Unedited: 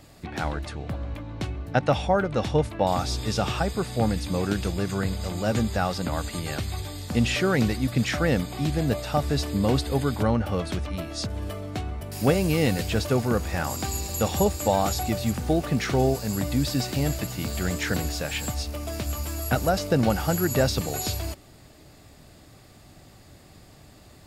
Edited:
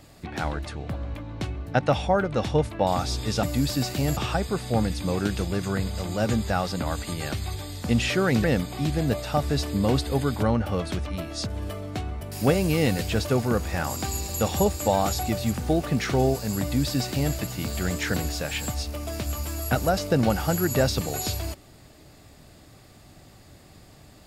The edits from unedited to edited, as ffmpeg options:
ffmpeg -i in.wav -filter_complex "[0:a]asplit=4[link_01][link_02][link_03][link_04];[link_01]atrim=end=3.432[link_05];[link_02]atrim=start=16.408:end=17.152[link_06];[link_03]atrim=start=3.428:end=7.702[link_07];[link_04]atrim=start=8.238[link_08];[link_05][link_06]acrossfade=duration=0.004:curve1=hsin:curve2=hsin[link_09];[link_09][link_07]acrossfade=duration=0.004:curve1=hsin:curve2=hsin[link_10];[link_10][link_08]acrossfade=duration=0.004:curve1=hsin:curve2=hsin" out.wav

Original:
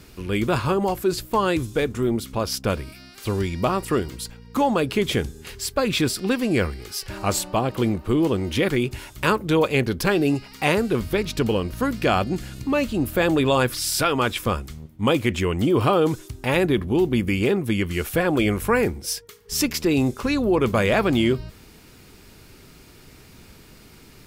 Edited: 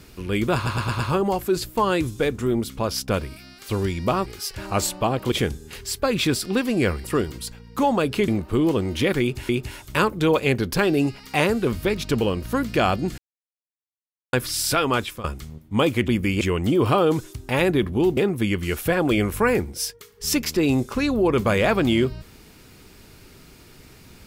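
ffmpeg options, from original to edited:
ffmpeg -i in.wav -filter_complex "[0:a]asplit=16[link_01][link_02][link_03][link_04][link_05][link_06][link_07][link_08][link_09][link_10][link_11][link_12][link_13][link_14][link_15][link_16];[link_01]atrim=end=0.662[link_17];[link_02]atrim=start=0.548:end=0.662[link_18];[link_03]atrim=start=0.548:end=0.662[link_19];[link_04]atrim=start=0.548:end=0.662[link_20];[link_05]atrim=start=0.548:end=3.822[link_21];[link_06]atrim=start=6.778:end=7.842[link_22];[link_07]atrim=start=5.058:end=6.782[link_23];[link_08]atrim=start=3.818:end=5.062[link_24];[link_09]atrim=start=7.838:end=9.052[link_25];[link_10]atrim=start=8.768:end=12.46,asetpts=PTS-STARTPTS,afade=type=out:start_time=3.688:duration=0.004:curve=hsin[link_26];[link_11]atrim=start=12.46:end=13.61,asetpts=PTS-STARTPTS,volume=0[link_27];[link_12]atrim=start=13.61:end=14.52,asetpts=PTS-STARTPTS,afade=type=in:duration=0.004:curve=hsin,afade=type=out:start_time=0.62:duration=0.29:silence=0.141254[link_28];[link_13]atrim=start=14.52:end=15.362,asetpts=PTS-STARTPTS,afade=type=in:duration=0.004:curve=hsin:silence=0.141254[link_29];[link_14]atrim=start=17.118:end=17.452[link_30];[link_15]atrim=start=15.358:end=17.122[link_31];[link_16]atrim=start=17.448[link_32];[link_17][link_18]acrossfade=duration=0.004:curve1=hsin:curve2=hsin[link_33];[link_33][link_19]acrossfade=duration=0.004:curve1=hsin:curve2=hsin[link_34];[link_34][link_20]acrossfade=duration=0.004:curve1=hsin:curve2=hsin[link_35];[link_35][link_21]acrossfade=duration=0.004:curve1=hsin:curve2=hsin[link_36];[link_36][link_22]acrossfade=duration=0.004:curve1=hsin:curve2=hsin[link_37];[link_37][link_23]acrossfade=duration=0.004:curve1=hsin:curve2=hsin[link_38];[link_38][link_24]acrossfade=duration=0.004:curve1=hsin:curve2=hsin[link_39];[link_39][link_25]acrossfade=duration=0.004:curve1=hsin:curve2=hsin[link_40];[link_26][link_27][link_28][link_29]concat=n=4:v=0:a=1[link_41];[link_40][link_41]acrossfade=duration=0.004:curve1=hsin:curve2=hsin[link_42];[link_42][link_30]acrossfade=duration=0.004:curve1=hsin:curve2=hsin[link_43];[link_43][link_31]acrossfade=duration=0.004:curve1=hsin:curve2=hsin[link_44];[link_44][link_32]acrossfade=duration=0.004:curve1=hsin:curve2=hsin" out.wav

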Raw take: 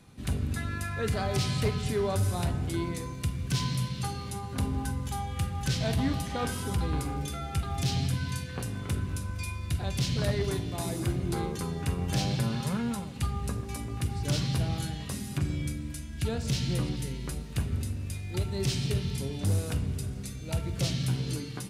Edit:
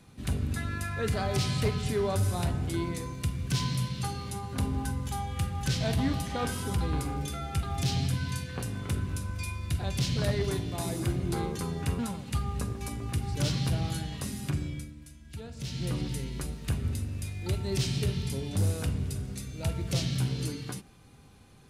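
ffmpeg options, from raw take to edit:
ffmpeg -i in.wav -filter_complex "[0:a]asplit=4[link_01][link_02][link_03][link_04];[link_01]atrim=end=11.992[link_05];[link_02]atrim=start=12.868:end=15.83,asetpts=PTS-STARTPTS,afade=type=out:start_time=2.472:duration=0.49:silence=0.281838[link_06];[link_03]atrim=start=15.83:end=16.45,asetpts=PTS-STARTPTS,volume=-11dB[link_07];[link_04]atrim=start=16.45,asetpts=PTS-STARTPTS,afade=type=in:duration=0.49:silence=0.281838[link_08];[link_06][link_07][link_08]concat=n=3:v=0:a=1[link_09];[link_05][link_09]acrossfade=duration=0.004:curve1=hsin:curve2=hsin" out.wav

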